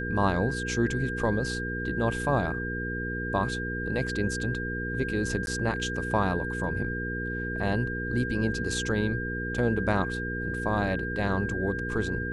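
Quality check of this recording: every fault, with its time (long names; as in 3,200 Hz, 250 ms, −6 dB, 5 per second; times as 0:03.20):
mains hum 60 Hz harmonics 8 −34 dBFS
whistle 1,600 Hz −33 dBFS
0:05.46–0:05.47: drop-out 11 ms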